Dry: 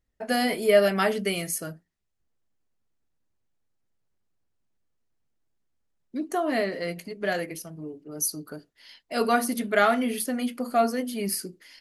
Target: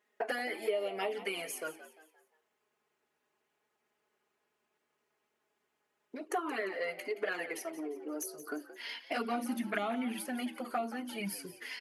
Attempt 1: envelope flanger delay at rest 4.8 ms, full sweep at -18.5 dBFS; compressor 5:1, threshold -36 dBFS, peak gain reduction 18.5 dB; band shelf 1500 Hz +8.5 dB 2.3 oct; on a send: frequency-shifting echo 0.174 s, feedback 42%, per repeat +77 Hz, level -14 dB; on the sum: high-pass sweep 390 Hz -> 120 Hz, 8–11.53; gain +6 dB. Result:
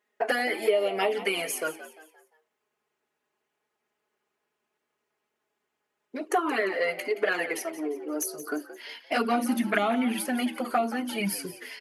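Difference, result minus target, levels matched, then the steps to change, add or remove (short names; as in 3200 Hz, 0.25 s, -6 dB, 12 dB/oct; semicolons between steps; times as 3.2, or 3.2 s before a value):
compressor: peak gain reduction -9 dB
change: compressor 5:1, threshold -47.5 dBFS, peak gain reduction 27.5 dB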